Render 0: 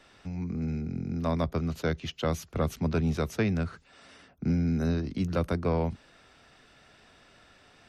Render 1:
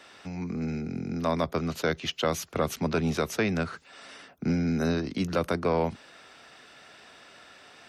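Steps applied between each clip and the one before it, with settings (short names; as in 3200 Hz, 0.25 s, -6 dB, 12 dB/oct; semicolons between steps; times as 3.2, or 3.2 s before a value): HPF 390 Hz 6 dB/oct; in parallel at +2.5 dB: limiter -24 dBFS, peak gain reduction 7.5 dB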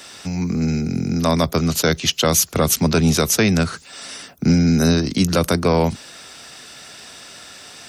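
tone controls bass +6 dB, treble +15 dB; gain +7.5 dB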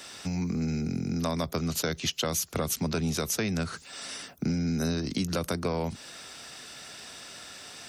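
compressor 4:1, threshold -22 dBFS, peak gain reduction 9.5 dB; gain -5 dB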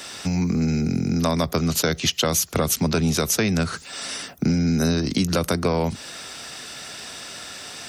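reverb, pre-delay 65 ms, DRR 31 dB; gain +8 dB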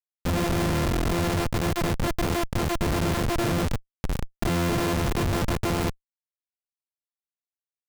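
sample sorter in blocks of 128 samples; Schmitt trigger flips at -22.5 dBFS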